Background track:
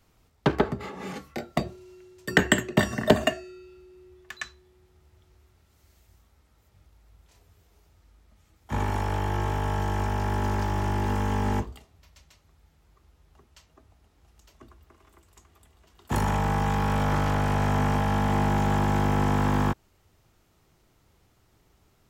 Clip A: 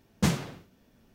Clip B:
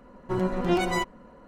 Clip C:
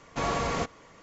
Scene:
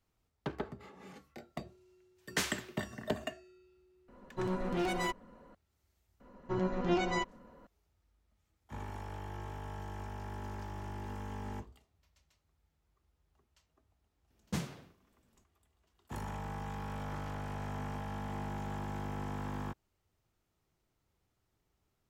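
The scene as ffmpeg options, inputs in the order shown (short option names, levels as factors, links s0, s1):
-filter_complex "[1:a]asplit=2[s0][s1];[2:a]asplit=2[s2][s3];[0:a]volume=0.158[s4];[s0]highpass=1300[s5];[s2]asoftclip=type=hard:threshold=0.075[s6];[s3]aresample=16000,aresample=44100[s7];[s5]atrim=end=1.14,asetpts=PTS-STARTPTS,volume=0.841,afade=t=in:d=0.1,afade=t=out:st=1.04:d=0.1,adelay=2140[s8];[s6]atrim=end=1.47,asetpts=PTS-STARTPTS,volume=0.473,afade=t=in:d=0.004:c=hsin,afade=t=out:st=1.466:d=0.004:c=hsin,adelay=4080[s9];[s7]atrim=end=1.47,asetpts=PTS-STARTPTS,volume=0.473,afade=t=in:d=0.004:c=hsin,afade=t=out:st=1.466:d=0.004:c=hsin,adelay=6200[s10];[s1]atrim=end=1.14,asetpts=PTS-STARTPTS,volume=0.266,afade=t=in:d=0.004:c=hsin,afade=t=out:st=1.136:d=0.004:c=hsin,adelay=14300[s11];[s4][s8][s9][s10][s11]amix=inputs=5:normalize=0"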